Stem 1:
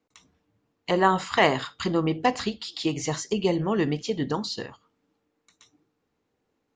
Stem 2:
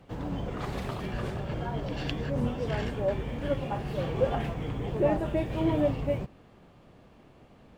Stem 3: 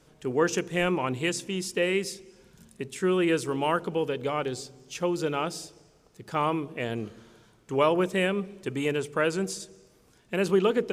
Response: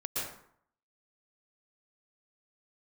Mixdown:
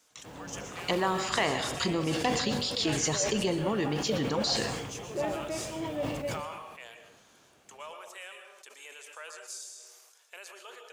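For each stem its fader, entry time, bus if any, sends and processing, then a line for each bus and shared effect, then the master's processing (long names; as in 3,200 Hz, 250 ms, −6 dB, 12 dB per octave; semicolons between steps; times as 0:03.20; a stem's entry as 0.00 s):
−2.5 dB, 0.00 s, bus A, send −19.5 dB, no processing
−6.5 dB, 0.15 s, no bus, send −14.5 dB, high-pass filter 65 Hz; low-shelf EQ 330 Hz −9.5 dB
−10.0 dB, 0.00 s, bus A, send −7.5 dB, parametric band 6,500 Hz +4.5 dB 0.39 octaves; downward compressor 2 to 1, threshold −41 dBFS, peak gain reduction 12.5 dB; high-pass filter 650 Hz 24 dB per octave
bus A: 0.0 dB, downward compressor 6 to 1, threshold −28 dBFS, peak gain reduction 11.5 dB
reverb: on, RT60 0.65 s, pre-delay 108 ms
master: high-shelf EQ 3,600 Hz +9 dB; level that may fall only so fast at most 35 dB per second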